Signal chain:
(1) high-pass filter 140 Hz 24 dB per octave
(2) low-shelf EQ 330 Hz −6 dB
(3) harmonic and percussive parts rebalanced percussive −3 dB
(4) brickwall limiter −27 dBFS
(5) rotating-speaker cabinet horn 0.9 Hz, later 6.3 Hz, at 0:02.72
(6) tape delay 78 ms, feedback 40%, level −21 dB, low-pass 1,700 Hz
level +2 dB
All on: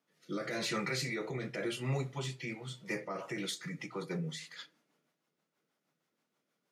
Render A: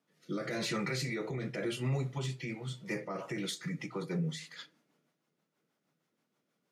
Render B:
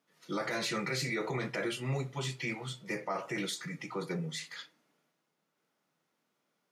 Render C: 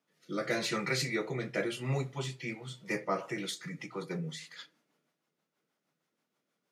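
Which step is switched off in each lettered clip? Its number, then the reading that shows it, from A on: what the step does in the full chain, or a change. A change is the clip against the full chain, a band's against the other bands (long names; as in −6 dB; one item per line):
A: 2, 125 Hz band +4.0 dB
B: 5, change in momentary loudness spread −2 LU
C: 4, change in crest factor +3.0 dB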